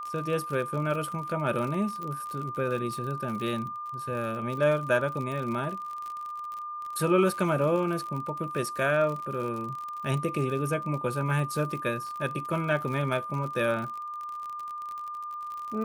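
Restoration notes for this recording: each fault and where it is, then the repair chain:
surface crackle 51 per second −34 dBFS
whistle 1,200 Hz −34 dBFS
0:02.03: click −25 dBFS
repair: click removal
notch filter 1,200 Hz, Q 30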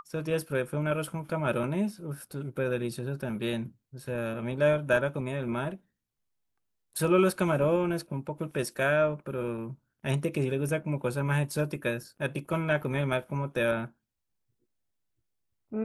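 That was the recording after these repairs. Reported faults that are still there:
none of them is left

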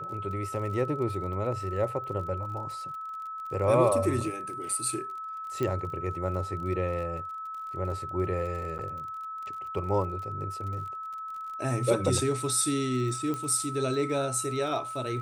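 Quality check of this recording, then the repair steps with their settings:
surface crackle 40 per second −39 dBFS
whistle 1,300 Hz −35 dBFS
0:05.63: click −18 dBFS
0:08.78–0:08.79: drop-out 9.2 ms
0:13.34: click −20 dBFS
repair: click removal
notch filter 1,300 Hz, Q 30
repair the gap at 0:08.78, 9.2 ms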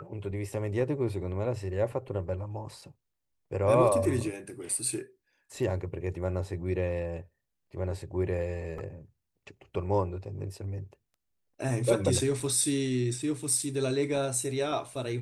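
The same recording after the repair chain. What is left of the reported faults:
0:05.63: click

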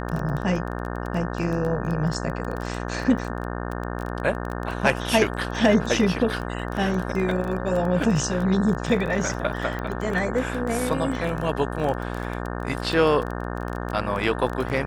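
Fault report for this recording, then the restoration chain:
mains buzz 60 Hz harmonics 30 −30 dBFS
surface crackle 20 per second −27 dBFS
0:09.79: click −19 dBFS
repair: click removal
hum removal 60 Hz, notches 30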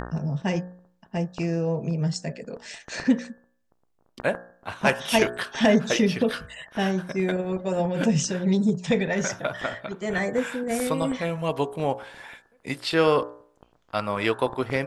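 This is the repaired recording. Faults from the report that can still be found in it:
none of them is left

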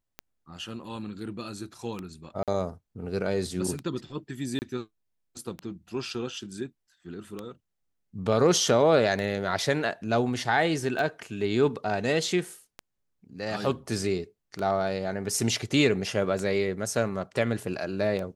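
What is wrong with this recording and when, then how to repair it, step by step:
scratch tick 33 1/3 rpm −20 dBFS
0:02.43–0:02.48: drop-out 47 ms
0:04.59–0:04.62: drop-out 29 ms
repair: click removal
repair the gap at 0:02.43, 47 ms
repair the gap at 0:04.59, 29 ms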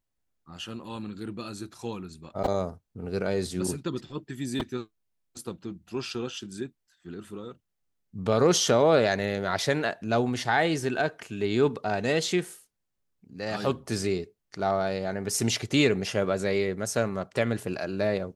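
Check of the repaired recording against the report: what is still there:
none of them is left

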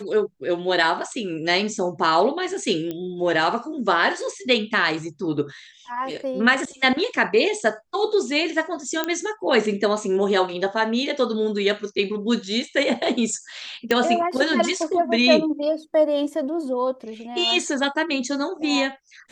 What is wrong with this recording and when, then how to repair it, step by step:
0:02.91: click −17 dBFS
0:09.04: click −8 dBFS
0:13.91: click −7 dBFS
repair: click removal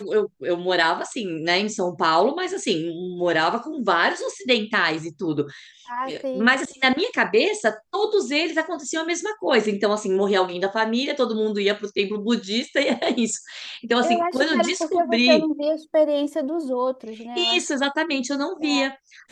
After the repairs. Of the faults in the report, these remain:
none of them is left

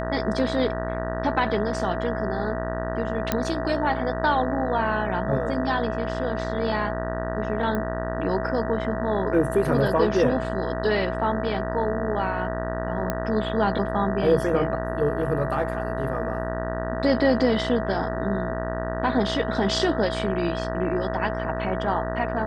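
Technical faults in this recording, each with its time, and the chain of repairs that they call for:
mains buzz 60 Hz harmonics 32 −30 dBFS
whistle 650 Hz −30 dBFS
0:03.32: click −7 dBFS
0:07.75: click −16 dBFS
0:13.10: click −11 dBFS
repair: click removal
hum removal 60 Hz, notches 32
notch filter 650 Hz, Q 30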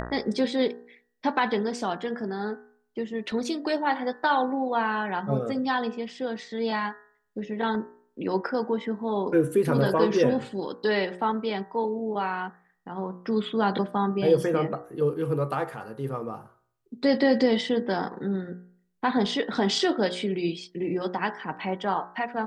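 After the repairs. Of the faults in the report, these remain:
0:07.75: click
0:13.10: click

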